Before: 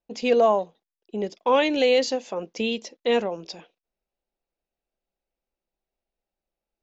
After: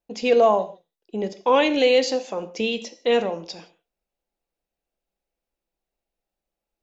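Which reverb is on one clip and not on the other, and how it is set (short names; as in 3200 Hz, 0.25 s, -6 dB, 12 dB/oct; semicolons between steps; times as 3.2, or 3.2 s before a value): non-linear reverb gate 0.2 s falling, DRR 10 dB; gain +1.5 dB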